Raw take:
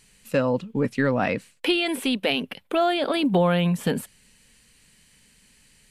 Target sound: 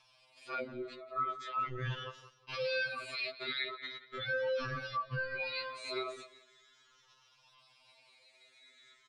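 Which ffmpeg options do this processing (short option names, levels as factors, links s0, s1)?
-filter_complex "[0:a]afftfilt=real='re*pow(10,17/40*sin(2*PI*(0.78*log(max(b,1)*sr/1024/100)/log(2)-(-0.61)*(pts-256)/sr)))':imag='im*pow(10,17/40*sin(2*PI*(0.78*log(max(b,1)*sr/1024/100)/log(2)-(-0.61)*(pts-256)/sr)))':win_size=1024:overlap=0.75,lowshelf=f=250:g=-3.5,aecho=1:1:2.7:0.46,acompressor=threshold=0.0891:ratio=3,alimiter=limit=0.0891:level=0:latency=1:release=48,highpass=190,equalizer=f=460:t=q:w=4:g=4,equalizer=f=740:t=q:w=4:g=5,equalizer=f=1400:t=q:w=4:g=9,equalizer=f=3300:t=q:w=4:g=10,lowpass=f=6000:w=0.5412,lowpass=f=6000:w=1.3066,aeval=exprs='val(0)*sin(2*PI*870*n/s)':c=same,asplit=2[s0][s1];[s1]adelay=115,lowpass=f=3300:p=1,volume=0.2,asplit=2[s2][s3];[s3]adelay=115,lowpass=f=3300:p=1,volume=0.24,asplit=2[s4][s5];[s5]adelay=115,lowpass=f=3300:p=1,volume=0.24[s6];[s2][s4][s6]amix=inputs=3:normalize=0[s7];[s0][s7]amix=inputs=2:normalize=0,atempo=0.65,afftfilt=real='re*2.45*eq(mod(b,6),0)':imag='im*2.45*eq(mod(b,6),0)':win_size=2048:overlap=0.75,volume=0.501"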